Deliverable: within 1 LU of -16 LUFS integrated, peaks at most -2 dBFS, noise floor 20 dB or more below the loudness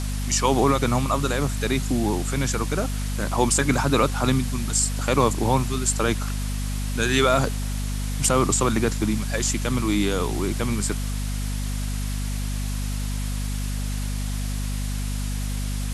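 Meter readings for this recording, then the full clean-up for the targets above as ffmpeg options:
hum 50 Hz; highest harmonic 250 Hz; hum level -24 dBFS; noise floor -27 dBFS; noise floor target -44 dBFS; loudness -24.0 LUFS; peak level -6.0 dBFS; loudness target -16.0 LUFS
-> -af "bandreject=f=50:t=h:w=4,bandreject=f=100:t=h:w=4,bandreject=f=150:t=h:w=4,bandreject=f=200:t=h:w=4,bandreject=f=250:t=h:w=4"
-af "afftdn=nr=17:nf=-27"
-af "volume=2.51,alimiter=limit=0.794:level=0:latency=1"

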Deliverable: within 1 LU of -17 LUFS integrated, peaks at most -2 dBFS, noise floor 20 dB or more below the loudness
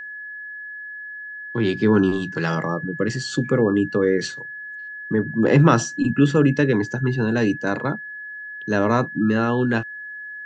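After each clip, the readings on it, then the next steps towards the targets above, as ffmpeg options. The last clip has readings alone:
steady tone 1.7 kHz; tone level -32 dBFS; loudness -20.5 LUFS; peak level -3.0 dBFS; loudness target -17.0 LUFS
-> -af "bandreject=f=1700:w=30"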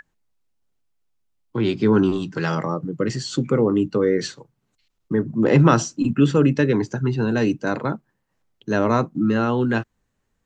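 steady tone not found; loudness -21.0 LUFS; peak level -2.5 dBFS; loudness target -17.0 LUFS
-> -af "volume=1.58,alimiter=limit=0.794:level=0:latency=1"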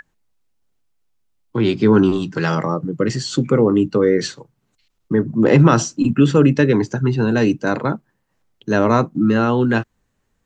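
loudness -17.0 LUFS; peak level -2.0 dBFS; noise floor -69 dBFS

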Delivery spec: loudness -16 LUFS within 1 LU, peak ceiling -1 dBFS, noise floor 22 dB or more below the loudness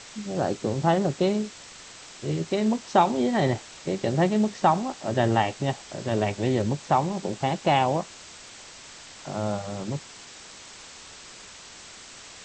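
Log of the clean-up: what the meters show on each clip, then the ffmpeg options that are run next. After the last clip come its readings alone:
noise floor -46 dBFS; noise floor target -48 dBFS; loudness -26.0 LUFS; peak level -7.5 dBFS; loudness target -16.0 LUFS
-> -af "afftdn=nr=6:nf=-46"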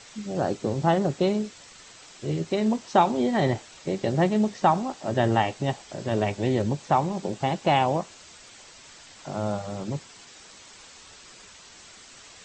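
noise floor -49 dBFS; loudness -26.0 LUFS; peak level -7.5 dBFS; loudness target -16.0 LUFS
-> -af "volume=3.16,alimiter=limit=0.891:level=0:latency=1"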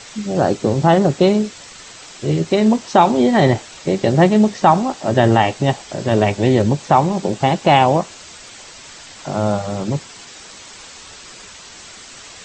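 loudness -16.5 LUFS; peak level -1.0 dBFS; noise floor -39 dBFS

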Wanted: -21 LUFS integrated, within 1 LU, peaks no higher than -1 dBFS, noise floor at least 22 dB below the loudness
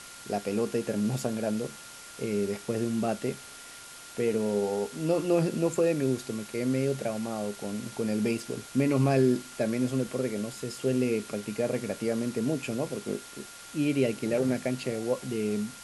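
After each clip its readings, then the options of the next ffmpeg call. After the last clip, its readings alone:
steady tone 1.4 kHz; tone level -51 dBFS; noise floor -46 dBFS; noise floor target -52 dBFS; loudness -29.5 LUFS; peak level -12.5 dBFS; loudness target -21.0 LUFS
-> -af "bandreject=f=1400:w=30"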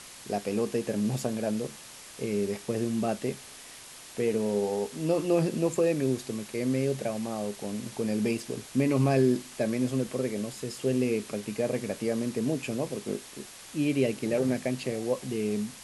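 steady tone not found; noise floor -47 dBFS; noise floor target -52 dBFS
-> -af "afftdn=nr=6:nf=-47"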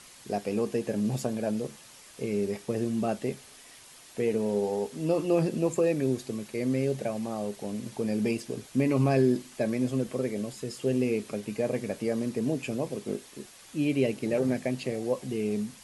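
noise floor -52 dBFS; loudness -29.5 LUFS; peak level -13.0 dBFS; loudness target -21.0 LUFS
-> -af "volume=2.66"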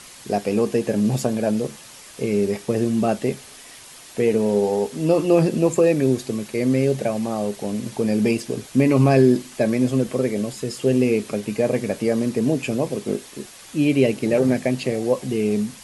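loudness -21.0 LUFS; peak level -4.5 dBFS; noise floor -43 dBFS

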